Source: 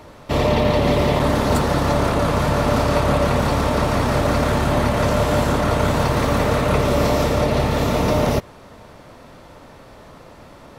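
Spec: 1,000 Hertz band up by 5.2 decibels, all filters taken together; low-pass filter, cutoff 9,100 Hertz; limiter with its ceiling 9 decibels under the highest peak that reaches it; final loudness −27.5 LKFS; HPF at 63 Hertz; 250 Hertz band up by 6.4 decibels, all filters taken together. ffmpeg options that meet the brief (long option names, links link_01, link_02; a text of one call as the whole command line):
ffmpeg -i in.wav -af "highpass=63,lowpass=9100,equalizer=frequency=250:width_type=o:gain=7.5,equalizer=frequency=1000:width_type=o:gain=6,volume=-8.5dB,alimiter=limit=-18.5dB:level=0:latency=1" out.wav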